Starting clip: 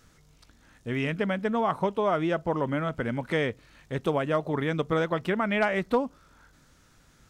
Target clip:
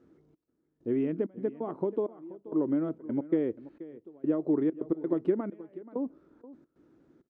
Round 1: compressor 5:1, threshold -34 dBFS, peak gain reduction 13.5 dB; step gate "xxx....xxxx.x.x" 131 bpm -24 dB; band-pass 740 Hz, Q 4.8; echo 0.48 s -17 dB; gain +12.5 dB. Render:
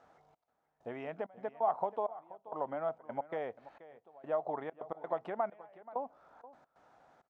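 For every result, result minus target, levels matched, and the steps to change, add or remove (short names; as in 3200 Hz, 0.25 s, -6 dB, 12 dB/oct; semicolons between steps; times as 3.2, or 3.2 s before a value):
1000 Hz band +17.0 dB; compressor: peak gain reduction +5 dB
change: band-pass 330 Hz, Q 4.8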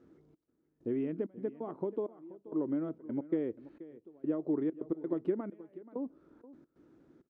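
compressor: peak gain reduction +5 dB
change: compressor 5:1, threshold -27.5 dBFS, peak gain reduction 8.5 dB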